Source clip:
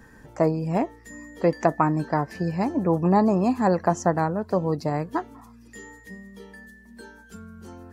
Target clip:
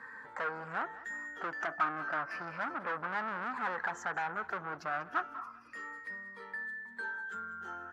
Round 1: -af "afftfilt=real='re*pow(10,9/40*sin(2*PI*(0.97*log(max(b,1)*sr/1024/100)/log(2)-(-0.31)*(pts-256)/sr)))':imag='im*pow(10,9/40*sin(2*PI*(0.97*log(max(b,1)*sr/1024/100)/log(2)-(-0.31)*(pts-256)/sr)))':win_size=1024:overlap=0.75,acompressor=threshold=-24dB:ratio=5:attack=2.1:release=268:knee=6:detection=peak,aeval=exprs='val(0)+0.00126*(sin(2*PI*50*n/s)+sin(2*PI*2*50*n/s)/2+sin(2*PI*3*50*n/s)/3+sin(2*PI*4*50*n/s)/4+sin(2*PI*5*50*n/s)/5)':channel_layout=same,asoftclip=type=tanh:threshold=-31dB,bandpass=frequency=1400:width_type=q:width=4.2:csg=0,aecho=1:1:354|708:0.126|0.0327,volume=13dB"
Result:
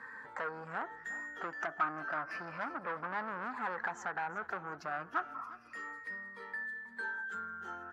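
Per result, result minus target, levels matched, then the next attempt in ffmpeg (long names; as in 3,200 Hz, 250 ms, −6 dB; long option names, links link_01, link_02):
echo 160 ms late; downward compressor: peak gain reduction +5 dB
-af "afftfilt=real='re*pow(10,9/40*sin(2*PI*(0.97*log(max(b,1)*sr/1024/100)/log(2)-(-0.31)*(pts-256)/sr)))':imag='im*pow(10,9/40*sin(2*PI*(0.97*log(max(b,1)*sr/1024/100)/log(2)-(-0.31)*(pts-256)/sr)))':win_size=1024:overlap=0.75,acompressor=threshold=-24dB:ratio=5:attack=2.1:release=268:knee=6:detection=peak,aeval=exprs='val(0)+0.00126*(sin(2*PI*50*n/s)+sin(2*PI*2*50*n/s)/2+sin(2*PI*3*50*n/s)/3+sin(2*PI*4*50*n/s)/4+sin(2*PI*5*50*n/s)/5)':channel_layout=same,asoftclip=type=tanh:threshold=-31dB,bandpass=frequency=1400:width_type=q:width=4.2:csg=0,aecho=1:1:194|388:0.126|0.0327,volume=13dB"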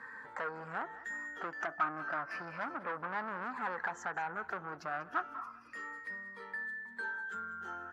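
downward compressor: peak gain reduction +5 dB
-af "afftfilt=real='re*pow(10,9/40*sin(2*PI*(0.97*log(max(b,1)*sr/1024/100)/log(2)-(-0.31)*(pts-256)/sr)))':imag='im*pow(10,9/40*sin(2*PI*(0.97*log(max(b,1)*sr/1024/100)/log(2)-(-0.31)*(pts-256)/sr)))':win_size=1024:overlap=0.75,acompressor=threshold=-17.5dB:ratio=5:attack=2.1:release=268:knee=6:detection=peak,aeval=exprs='val(0)+0.00126*(sin(2*PI*50*n/s)+sin(2*PI*2*50*n/s)/2+sin(2*PI*3*50*n/s)/3+sin(2*PI*4*50*n/s)/4+sin(2*PI*5*50*n/s)/5)':channel_layout=same,asoftclip=type=tanh:threshold=-31dB,bandpass=frequency=1400:width_type=q:width=4.2:csg=0,aecho=1:1:194|388:0.126|0.0327,volume=13dB"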